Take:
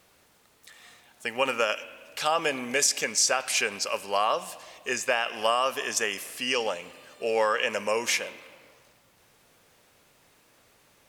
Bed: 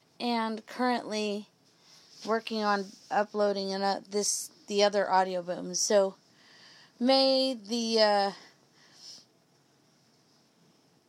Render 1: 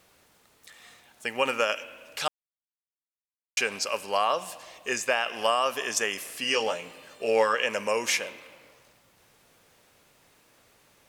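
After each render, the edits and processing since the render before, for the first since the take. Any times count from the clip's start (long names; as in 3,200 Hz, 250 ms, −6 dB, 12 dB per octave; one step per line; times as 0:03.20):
0:02.28–0:03.57: silence
0:06.42–0:07.55: double-tracking delay 18 ms −6 dB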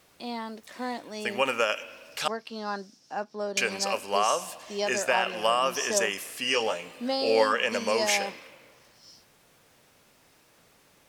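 mix in bed −5.5 dB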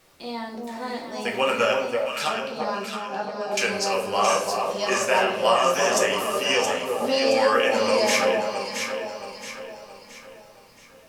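delay that swaps between a low-pass and a high-pass 336 ms, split 1,000 Hz, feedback 64%, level −2.5 dB
rectangular room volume 58 cubic metres, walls mixed, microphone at 0.72 metres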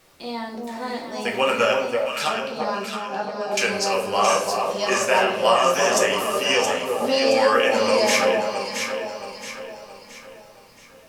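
level +2 dB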